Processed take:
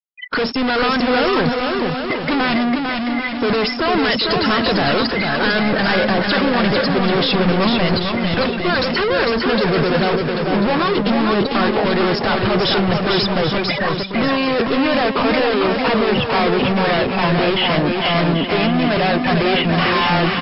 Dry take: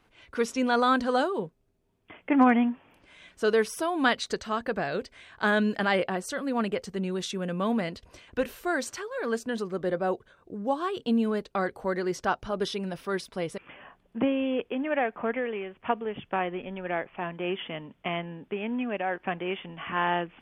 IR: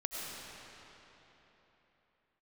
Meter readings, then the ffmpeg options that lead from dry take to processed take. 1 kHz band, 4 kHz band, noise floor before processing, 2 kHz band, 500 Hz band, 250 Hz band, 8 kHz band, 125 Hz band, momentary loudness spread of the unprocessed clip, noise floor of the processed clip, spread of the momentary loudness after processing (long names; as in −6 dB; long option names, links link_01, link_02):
+11.0 dB, +19.0 dB, −67 dBFS, +13.0 dB, +11.5 dB, +11.5 dB, below −15 dB, +18.0 dB, 11 LU, −23 dBFS, 3 LU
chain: -af "highpass=frequency=95:width=0.5412,highpass=frequency=95:width=1.3066,afftfilt=real='re*gte(hypot(re,im),0.0112)':imag='im*gte(hypot(re,im),0.0112)':win_size=1024:overlap=0.75,lowshelf=frequency=250:gain=4,acontrast=28,aresample=16000,aeval=exprs='0.211*(abs(mod(val(0)/0.211+3,4)-2)-1)':channel_layout=same,aresample=44100,apsyclip=28dB,asoftclip=type=tanh:threshold=-16.5dB,aecho=1:1:450|787.5|1041|1230|1373:0.631|0.398|0.251|0.158|0.1" -ar 12000 -c:a libmp3lame -b:a 40k